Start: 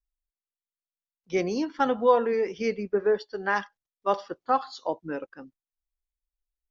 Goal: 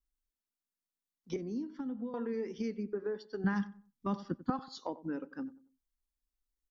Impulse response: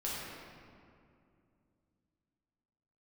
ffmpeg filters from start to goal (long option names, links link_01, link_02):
-filter_complex "[0:a]equalizer=frequency=250:width_type=o:width=0.67:gain=10,equalizer=frequency=630:width_type=o:width=0.67:gain=-6,equalizer=frequency=2500:width_type=o:width=0.67:gain=-6,acompressor=threshold=-36dB:ratio=4,asettb=1/sr,asplit=3[link_01][link_02][link_03];[link_01]atrim=end=3.444[link_04];[link_02]atrim=start=3.44:end=4.5,asetpts=PTS-STARTPTS,afade=type=in:duration=0.004:curve=qsin,afade=type=out:start_time=1.056:duration=0.004:curve=qsin,lowshelf=frequency=290:width_type=q:width=1.5:gain=13.5[link_05];[link_03]atrim=start=4.496[link_06];[link_04][link_05]acrossfade=duration=0.004:curve1=hsin:curve2=qsin[link_07];[link_07][link_06]acrossfade=duration=0.004:curve1=qsin:curve2=hsin,asplit=2[link_08][link_09];[link_09]adelay=93,lowpass=frequency=1300:poles=1,volume=-16dB,asplit=2[link_10][link_11];[link_11]adelay=93,lowpass=frequency=1300:poles=1,volume=0.33,asplit=2[link_12][link_13];[link_13]adelay=93,lowpass=frequency=1300:poles=1,volume=0.33[link_14];[link_08][link_10][link_12][link_14]amix=inputs=4:normalize=0,asettb=1/sr,asplit=3[link_15][link_16][link_17];[link_15]atrim=end=1.364[link_18];[link_16]atrim=start=1.36:end=2.14,asetpts=PTS-STARTPTS,afade=type=in:duration=0.004:curve=qsin,afade=type=out:start_time=0.776:duration=0.004:curve=qsin,acrossover=split=360[link_19][link_20];[link_20]acompressor=threshold=-52dB:ratio=6[link_21];[link_19][link_21]amix=inputs=2:normalize=0[link_22];[link_17]atrim=start=2.136[link_23];[link_18][link_22]acrossfade=duration=0.004:curve1=hsin:curve2=qsin[link_24];[link_24][link_23]acrossfade=duration=0.004:curve1=qsin:curve2=hsin"